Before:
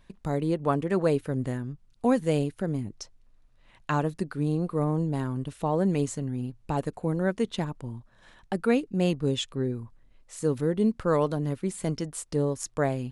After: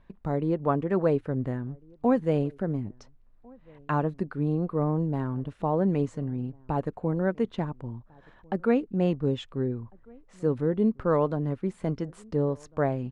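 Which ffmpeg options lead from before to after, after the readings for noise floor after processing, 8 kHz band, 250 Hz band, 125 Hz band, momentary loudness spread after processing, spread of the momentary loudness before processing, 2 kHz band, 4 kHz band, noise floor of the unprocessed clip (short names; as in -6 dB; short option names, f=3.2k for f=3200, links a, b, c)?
-57 dBFS, under -15 dB, 0.0 dB, 0.0 dB, 9 LU, 10 LU, -3.0 dB, -9.5 dB, -59 dBFS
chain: -filter_complex "[0:a]crystalizer=i=4:c=0,lowpass=1.3k,asplit=2[a][b];[b]adelay=1399,volume=-27dB,highshelf=f=4k:g=-31.5[c];[a][c]amix=inputs=2:normalize=0"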